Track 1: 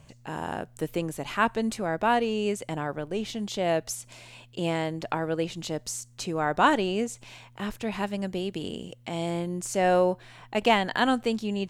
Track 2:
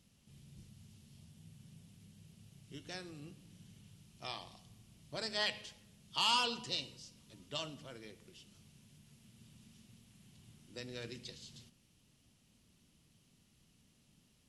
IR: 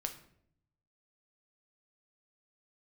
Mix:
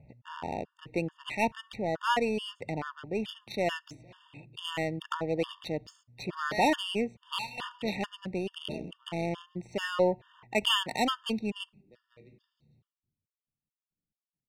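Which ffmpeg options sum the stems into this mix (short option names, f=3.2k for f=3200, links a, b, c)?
-filter_complex "[0:a]highpass=43,equalizer=f=2.9k:w=1:g=8.5,adynamicsmooth=sensitivity=3:basefreq=1.2k,volume=-2.5dB,asplit=3[a][b][c];[b]volume=-18.5dB[d];[1:a]agate=range=-33dB:threshold=-58dB:ratio=3:detection=peak,adynamicequalizer=threshold=0.00316:dfrequency=2200:dqfactor=0.9:tfrequency=2200:tqfactor=0.9:attack=5:release=100:ratio=0.375:range=2:mode=boostabove:tftype=bell,adynamicsmooth=sensitivity=3:basefreq=1.4k,adelay=1150,volume=-1dB,asplit=2[e][f];[f]volume=-6.5dB[g];[c]apad=whole_len=689627[h];[e][h]sidechaingate=range=-33dB:threshold=-51dB:ratio=16:detection=peak[i];[2:a]atrim=start_sample=2205[j];[d][g]amix=inputs=2:normalize=0[k];[k][j]afir=irnorm=-1:irlink=0[l];[a][i][l]amix=inputs=3:normalize=0,highshelf=f=9.4k:g=-5.5,bandreject=f=1.6k:w=9,afftfilt=real='re*gt(sin(2*PI*2.3*pts/sr)*(1-2*mod(floor(b*sr/1024/910),2)),0)':imag='im*gt(sin(2*PI*2.3*pts/sr)*(1-2*mod(floor(b*sr/1024/910),2)),0)':win_size=1024:overlap=0.75"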